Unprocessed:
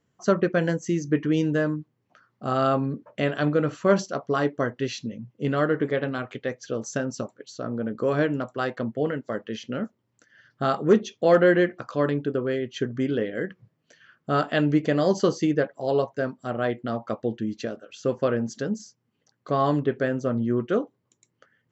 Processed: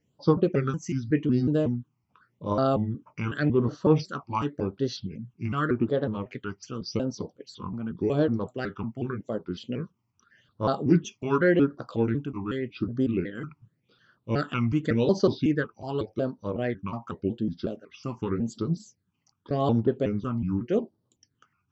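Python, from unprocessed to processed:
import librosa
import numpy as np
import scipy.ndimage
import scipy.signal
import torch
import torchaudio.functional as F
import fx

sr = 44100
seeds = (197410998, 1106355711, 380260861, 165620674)

y = fx.pitch_trill(x, sr, semitones=-4.0, every_ms=184)
y = fx.phaser_stages(y, sr, stages=8, low_hz=480.0, high_hz=2400.0, hz=0.87, feedback_pct=20)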